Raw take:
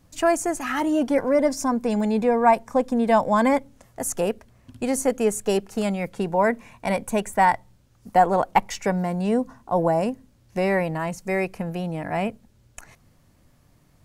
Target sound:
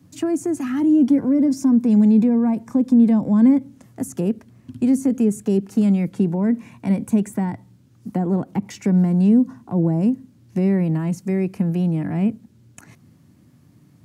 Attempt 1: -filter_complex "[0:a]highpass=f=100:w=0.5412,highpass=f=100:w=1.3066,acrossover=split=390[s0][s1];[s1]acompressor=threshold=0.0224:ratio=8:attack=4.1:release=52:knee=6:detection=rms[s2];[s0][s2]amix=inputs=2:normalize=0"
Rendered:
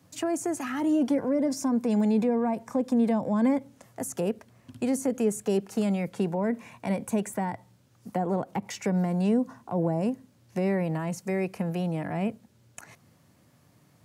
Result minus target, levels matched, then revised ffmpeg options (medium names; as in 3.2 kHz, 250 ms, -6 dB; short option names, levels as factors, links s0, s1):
500 Hz band +7.0 dB
-filter_complex "[0:a]highpass=f=100:w=0.5412,highpass=f=100:w=1.3066,lowshelf=f=400:t=q:w=1.5:g=8.5,acrossover=split=390[s0][s1];[s1]acompressor=threshold=0.0224:ratio=8:attack=4.1:release=52:knee=6:detection=rms[s2];[s0][s2]amix=inputs=2:normalize=0"